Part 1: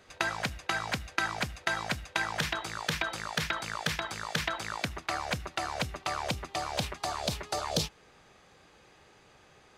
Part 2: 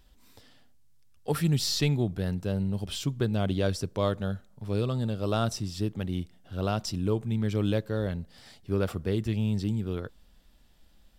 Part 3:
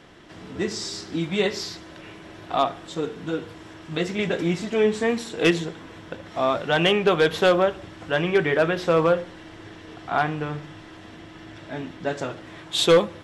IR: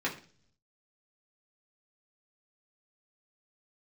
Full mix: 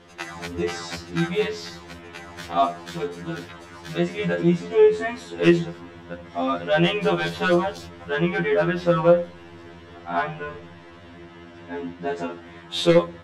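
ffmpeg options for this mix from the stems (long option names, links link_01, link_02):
-filter_complex "[0:a]volume=0.5dB,asplit=3[link_01][link_02][link_03];[link_01]atrim=end=4.35,asetpts=PTS-STARTPTS,afade=type=out:start_time=4.346:duration=0.004:curve=hsin[link_04];[link_02]atrim=start=4.35:end=6.95,asetpts=PTS-STARTPTS,volume=0[link_05];[link_03]atrim=start=6.95,asetpts=PTS-STARTPTS,afade=type=in:duration=0.004:curve=hsin[link_06];[link_04][link_05][link_06]concat=n=3:v=0:a=1[link_07];[1:a]lowshelf=frequency=360:gain=-8.5,acompressor=threshold=-29dB:ratio=6,volume=-17dB,asplit=2[link_08][link_09];[2:a]highshelf=frequency=3900:gain=-9,volume=2.5dB[link_10];[link_09]apad=whole_len=431061[link_11];[link_07][link_11]sidechaincompress=threshold=-54dB:ratio=8:attack=12:release=433[link_12];[link_12][link_08][link_10]amix=inputs=3:normalize=0,afftfilt=real='re*2*eq(mod(b,4),0)':imag='im*2*eq(mod(b,4),0)':win_size=2048:overlap=0.75"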